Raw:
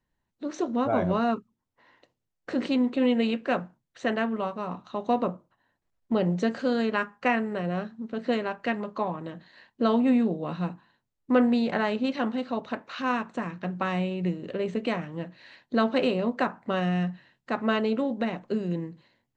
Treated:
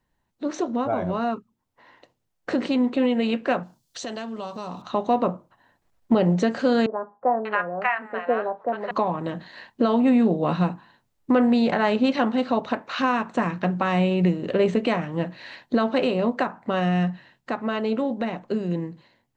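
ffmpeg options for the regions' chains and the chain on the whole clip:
-filter_complex "[0:a]asettb=1/sr,asplit=3[a][b][c];[a]atrim=end=3.634[d];[b]atrim=start=3.63:end=4.82,asetpts=PTS-STARTPTS,afade=t=in:d=0.004:c=qsin,afade=t=out:st=1.186:d=0.004:c=qsin,highshelf=f=3k:t=q:w=1.5:g=12.5,bandreject=f=3.8k:w=26,acompressor=threshold=-42dB:ratio=4:attack=3.2:release=140:knee=1:detection=peak[e];[c]atrim=start=4.816[f];[d][e]acrossfade=d=0.004:c1=hsin:c2=qsin[g];[g][f]acrossfade=d=0.004:c1=qsin:c2=hsin,asettb=1/sr,asplit=3[h][i][j];[h]atrim=end=6.864[k];[i]atrim=start=6.86:end=8.91,asetpts=PTS-STARTPTS,afade=t=in:d=0.004:c=qsin,afade=t=out:st=2.046:d=0.004:c=qsin,acrossover=split=480 2300:gain=0.126 1 0.1[l][m][n];[l][m][n]amix=inputs=3:normalize=0,acrossover=split=790[o][p];[p]adelay=590[q];[o][q]amix=inputs=2:normalize=0,atrim=end_sample=90405[r];[j]atrim=start=8.906[s];[k][r]acrossfade=d=0.004:c1=hsin:c2=qsin[t];[t][s]acrossfade=d=0.004:c1=qsin:c2=hsin,equalizer=f=810:w=1.5:g=3,alimiter=limit=-20.5dB:level=0:latency=1:release=411,dynaudnorm=f=390:g=17:m=5dB,volume=5dB"

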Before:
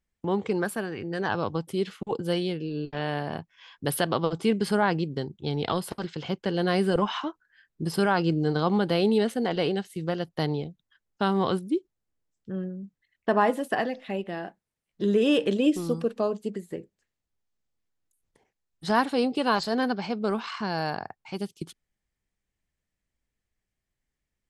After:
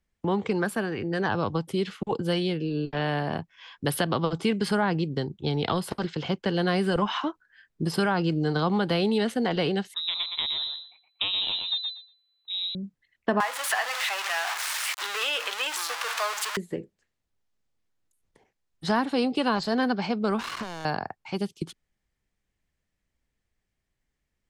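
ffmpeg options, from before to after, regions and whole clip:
-filter_complex "[0:a]asettb=1/sr,asplit=3[a][b][c];[a]atrim=end=9.944[d];[b]atrim=start=9.94:end=12.75,asetpts=PTS-STARTPTS,afade=t=in:d=0.004:c=qsin,afade=t=out:st=2.806:d=0.004:c=qsin,aeval=exprs='if(lt(val(0),0),0.447*val(0),val(0))':c=same,aecho=1:1:118|236|354:0.447|0.0715|0.0114,atrim=end_sample=123921,lowpass=f=3.4k:t=q:w=0.5098,lowpass=f=3.4k:t=q:w=0.6013,lowpass=f=3.4k:t=q:w=0.9,lowpass=f=3.4k:t=q:w=2.563,afreqshift=-4000[e];[c]atrim=start=12.746[f];[d][e]acrossfade=d=0.004:c1=hsin:c2=qsin[g];[g][f]acrossfade=d=0.004:c1=qsin:c2=hsin,asettb=1/sr,asplit=3[h][i][j];[h]atrim=end=13.404[k];[i]atrim=start=13.4:end=16.57,asetpts=PTS-STARTPTS,afade=t=in:d=0.004:c=qsin,afade=t=out:st=3.166:d=0.004:c=qsin,aeval=exprs='val(0)+0.5*0.0473*sgn(val(0))':c=same,highpass=f=1k:w=0.5412,highpass=f=1k:w=1.3066,acontrast=44[l];[j]atrim=start=16.566[m];[k][l]acrossfade=d=0.004:c1=hsin:c2=qsin[n];[n][m]acrossfade=d=0.004:c1=qsin:c2=hsin,asettb=1/sr,asplit=3[o][p][q];[o]atrim=end=20.394[r];[p]atrim=start=20.39:end=20.85,asetpts=PTS-STARTPTS,afade=t=in:d=0.004:c=qsin,afade=t=out:st=0.456:d=0.004:c=qsin,acompressor=threshold=-33dB:ratio=16:attack=3.2:release=140:knee=1:detection=peak,acrusher=bits=5:mix=0:aa=0.5[s];[q]atrim=start=20.846[t];[r][s]acrossfade=d=0.004:c1=hsin:c2=qsin[u];[u][t]acrossfade=d=0.004:c1=qsin:c2=hsin,highshelf=f=10k:g=-9.5,acrossover=split=290|740[v][w][x];[v]acompressor=threshold=-30dB:ratio=4[y];[w]acompressor=threshold=-35dB:ratio=4[z];[x]acompressor=threshold=-30dB:ratio=4[aa];[y][z][aa]amix=inputs=3:normalize=0,volume=4dB"

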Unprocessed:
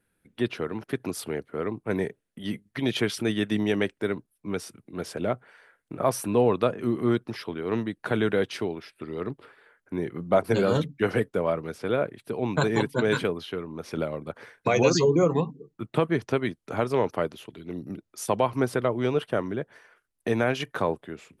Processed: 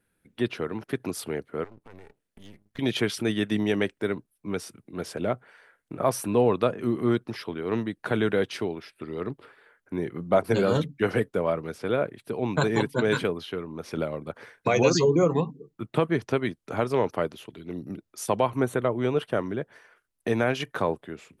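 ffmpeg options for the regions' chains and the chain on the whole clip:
-filter_complex "[0:a]asettb=1/sr,asplit=3[a][b][c];[a]atrim=end=1.644[d];[b]atrim=start=1.64:end=2.79,asetpts=PTS-STARTPTS,afade=t=in:d=0.004:c=qsin,afade=t=out:st=1.146:d=0.004:c=qsin,acompressor=threshold=-42dB:ratio=5:attack=3.2:release=140:knee=1:detection=peak,aeval=exprs='max(val(0),0)':c=same[e];[c]atrim=start=2.786[f];[d][e]acrossfade=d=0.004:c1=hsin:c2=qsin[g];[g][f]acrossfade=d=0.004:c1=qsin:c2=hsin,asettb=1/sr,asplit=3[h][i][j];[h]atrim=end=18.504[k];[i]atrim=start=18.5:end=19.17,asetpts=PTS-STARTPTS,afade=t=in:d=0.004:c=qsin,afade=t=out:st=0.666:d=0.004:c=qsin,asuperstop=centerf=5000:order=4:qfactor=3.3,equalizer=f=3.5k:t=o:w=1.5:g=-2.5[l];[j]atrim=start=19.166[m];[k][l]acrossfade=d=0.004:c1=hsin:c2=qsin[n];[n][m]acrossfade=d=0.004:c1=qsin:c2=hsin"

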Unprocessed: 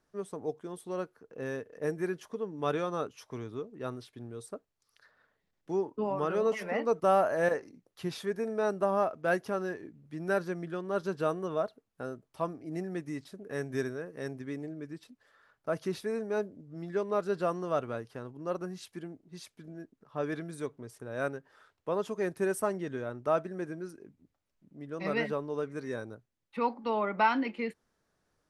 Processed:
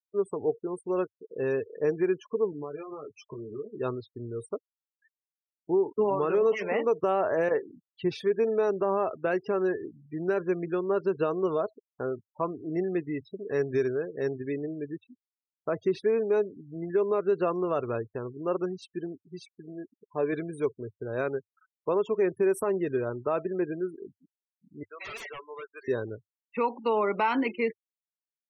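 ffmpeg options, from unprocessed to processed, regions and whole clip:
-filter_complex "[0:a]asettb=1/sr,asplit=3[a][b][c];[a]atrim=end=2.514[d];[b]atrim=start=2.51:end=3.78,asetpts=PTS-STARTPTS,afade=t=in:d=0.004:c=qsin,afade=t=out:st=1.266:d=0.004:c=qsin,acompressor=threshold=-42dB:ratio=16:attack=3.2:release=140:knee=1:detection=peak,highshelf=f=8.7k:g=-10,asplit=2[e][f];[f]adelay=14,volume=-3.5dB[g];[e][g]amix=inputs=2:normalize=0,atrim=end_sample=56007[h];[c]atrim=start=3.776[i];[d][h]acrossfade=d=0.004:c1=hsin:c2=qsin[j];[j][i]acrossfade=d=0.004:c1=qsin:c2=hsin,asettb=1/sr,asplit=3[k][l][m];[k]atrim=end=19.484[n];[l]atrim=start=19.48:end=20.33,asetpts=PTS-STARTPTS,afade=t=in:d=0.004:c=qsin,afade=t=out:st=0.846:d=0.004:c=qsin,lowpass=f=3.9k:p=1,lowshelf=f=170:g=-6,bandreject=f=1.3k:w=6.1[o];[m]atrim=start=20.326[p];[n][o]acrossfade=d=0.004:c1=hsin:c2=qsin[q];[q][p]acrossfade=d=0.004:c1=qsin:c2=hsin,asettb=1/sr,asplit=3[r][s][t];[r]atrim=end=24.834[u];[s]atrim=start=24.83:end=25.88,asetpts=PTS-STARTPTS,afade=t=in:d=0.004:c=qsin,afade=t=out:st=1.046:d=0.004:c=qsin,highpass=1.1k,highshelf=f=9.2k:g=12,aeval=exprs='0.0112*(abs(mod(val(0)/0.0112+3,4)-2)-1)':c=same[v];[t]atrim=start=25.876[w];[u][v]acrossfade=d=0.004:c1=hsin:c2=qsin[x];[x][w]acrossfade=d=0.004:c1=qsin:c2=hsin,afftfilt=real='re*gte(hypot(re,im),0.00631)':imag='im*gte(hypot(re,im),0.00631)':win_size=1024:overlap=0.75,equalizer=f=100:t=o:w=0.67:g=9,equalizer=f=400:t=o:w=0.67:g=11,equalizer=f=1k:t=o:w=0.67:g=6,equalizer=f=2.5k:t=o:w=0.67:g=8,alimiter=limit=-17dB:level=0:latency=1:release=99"

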